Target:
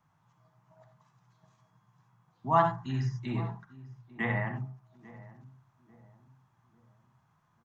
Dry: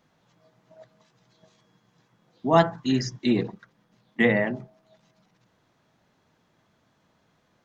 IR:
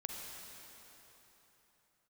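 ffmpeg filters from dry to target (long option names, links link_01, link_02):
-filter_complex "[0:a]equalizer=frequency=125:width_type=o:width=1:gain=10,equalizer=frequency=250:width_type=o:width=1:gain=-7,equalizer=frequency=500:width_type=o:width=1:gain=-12,equalizer=frequency=1000:width_type=o:width=1:gain=10,equalizer=frequency=2000:width_type=o:width=1:gain=-3,equalizer=frequency=4000:width_type=o:width=1:gain=-9,acrossover=split=350|2800[link_01][link_02][link_03];[link_01]alimiter=limit=-23dB:level=0:latency=1[link_04];[link_04][link_02][link_03]amix=inputs=3:normalize=0,asplit=2[link_05][link_06];[link_06]adelay=844,lowpass=frequency=810:poles=1,volume=-17dB,asplit=2[link_07][link_08];[link_08]adelay=844,lowpass=frequency=810:poles=1,volume=0.43,asplit=2[link_09][link_10];[link_10]adelay=844,lowpass=frequency=810:poles=1,volume=0.43,asplit=2[link_11][link_12];[link_12]adelay=844,lowpass=frequency=810:poles=1,volume=0.43[link_13];[link_05][link_07][link_09][link_11][link_13]amix=inputs=5:normalize=0[link_14];[1:a]atrim=start_sample=2205,atrim=end_sample=4410[link_15];[link_14][link_15]afir=irnorm=-1:irlink=0,acrossover=split=4100[link_16][link_17];[link_17]acompressor=threshold=-59dB:ratio=4:attack=1:release=60[link_18];[link_16][link_18]amix=inputs=2:normalize=0,volume=-2.5dB"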